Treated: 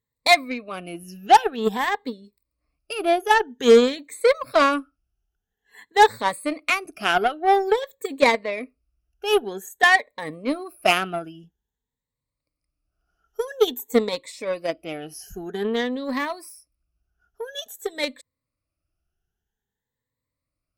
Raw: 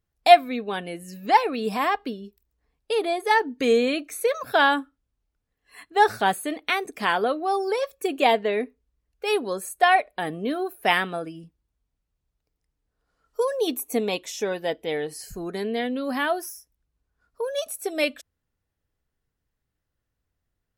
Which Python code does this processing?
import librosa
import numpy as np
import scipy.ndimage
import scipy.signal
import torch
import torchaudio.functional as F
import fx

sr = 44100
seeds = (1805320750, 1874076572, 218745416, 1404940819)

y = fx.spec_ripple(x, sr, per_octave=1.0, drift_hz=0.5, depth_db=17)
y = fx.cheby_harmonics(y, sr, harmonics=(3, 5, 7), levels_db=(-28, -18, -17), full_scale_db=-2.5)